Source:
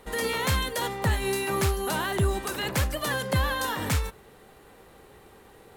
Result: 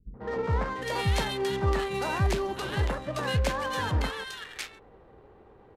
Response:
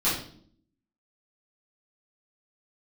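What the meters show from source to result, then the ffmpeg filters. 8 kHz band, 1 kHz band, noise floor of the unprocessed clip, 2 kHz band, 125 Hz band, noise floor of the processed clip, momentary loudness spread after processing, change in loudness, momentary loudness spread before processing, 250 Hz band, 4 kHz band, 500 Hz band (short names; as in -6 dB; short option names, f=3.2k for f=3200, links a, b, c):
-8.5 dB, -1.0 dB, -53 dBFS, -3.5 dB, -0.5 dB, -55 dBFS, 10 LU, -2.0 dB, 3 LU, -2.0 dB, -3.0 dB, -0.5 dB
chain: -filter_complex "[0:a]acrossover=split=200|1700[a][b][c];[b]adelay=140[d];[c]adelay=690[e];[a][d][e]amix=inputs=3:normalize=0,adynamicsmooth=sensitivity=7.5:basefreq=1.3k,aresample=32000,aresample=44100"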